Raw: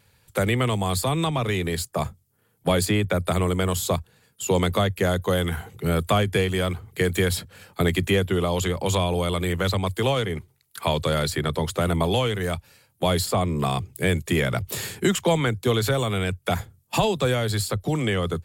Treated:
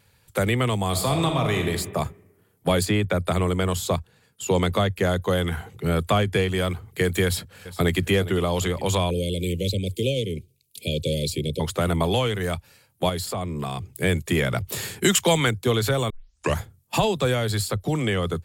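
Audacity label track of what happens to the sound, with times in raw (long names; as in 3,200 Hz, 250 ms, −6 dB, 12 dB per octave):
0.880000	1.680000	thrown reverb, RT60 1.2 s, DRR 3.5 dB
2.830000	6.580000	high-shelf EQ 10,000 Hz −7.5 dB
7.240000	8.060000	delay throw 410 ms, feedback 50%, level −15.5 dB
9.100000	11.600000	Chebyshev band-stop filter 540–2,400 Hz, order 4
13.090000	13.970000	downward compressor 2 to 1, threshold −29 dBFS
15.020000	15.510000	high-shelf EQ 2,100 Hz +9 dB
16.100000	16.100000	tape start 0.50 s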